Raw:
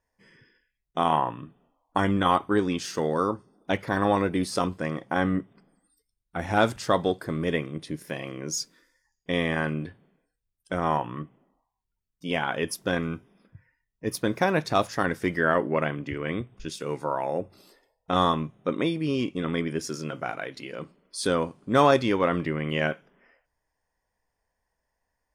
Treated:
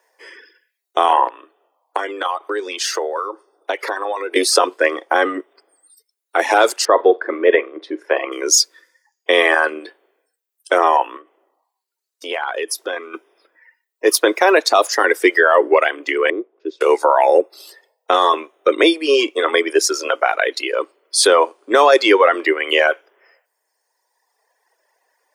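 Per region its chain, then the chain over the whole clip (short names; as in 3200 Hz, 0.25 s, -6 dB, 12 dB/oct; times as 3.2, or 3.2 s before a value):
1.28–4.36 HPF 310 Hz + high shelf 6000 Hz -4.5 dB + compressor, threshold -35 dBFS
6.85–8.32 LPF 1800 Hz + flutter echo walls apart 7.7 m, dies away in 0.2 s
11.16–13.14 high shelf 12000 Hz -6 dB + compressor 4:1, threshold -38 dBFS
16.3–16.81 band-pass 350 Hz, Q 1 + air absorption 140 m
whole clip: steep high-pass 350 Hz 48 dB/oct; reverb removal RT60 1.5 s; maximiser +20 dB; gain -1 dB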